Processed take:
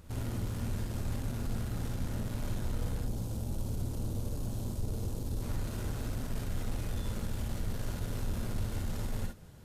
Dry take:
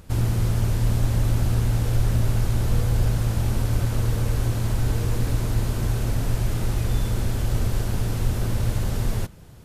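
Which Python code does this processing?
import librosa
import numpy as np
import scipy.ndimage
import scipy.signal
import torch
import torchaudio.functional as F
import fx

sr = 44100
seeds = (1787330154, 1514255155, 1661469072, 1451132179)

y = fx.peak_eq(x, sr, hz=1800.0, db=-14.0, octaves=1.4, at=(3.01, 5.42))
y = 10.0 ** (-23.5 / 20.0) * np.tanh(y / 10.0 ** (-23.5 / 20.0))
y = fx.rev_gated(y, sr, seeds[0], gate_ms=80, shape='rising', drr_db=1.5)
y = y * 10.0 ** (-8.5 / 20.0)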